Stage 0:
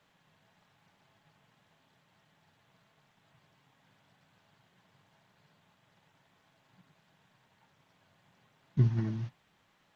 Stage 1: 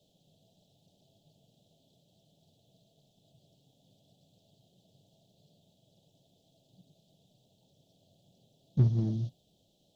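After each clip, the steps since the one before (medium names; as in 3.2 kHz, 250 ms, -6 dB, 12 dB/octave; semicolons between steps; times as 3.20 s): elliptic band-stop 660–3400 Hz, stop band 40 dB; in parallel at -5 dB: hard clipper -32.5 dBFS, distortion -4 dB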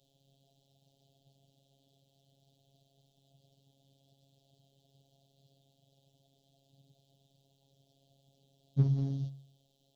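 de-hum 60.35 Hz, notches 31; robot voice 137 Hz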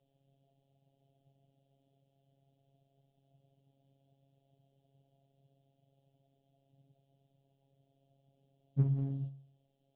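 steep low-pass 2.7 kHz 36 dB/octave; trim -2.5 dB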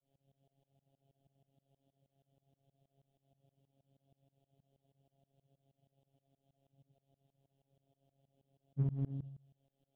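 tremolo saw up 6.3 Hz, depth 100%; trim +1 dB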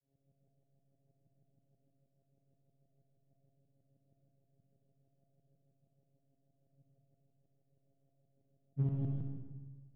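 local Wiener filter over 41 samples; reverberation RT60 1.4 s, pre-delay 15 ms, DRR 0.5 dB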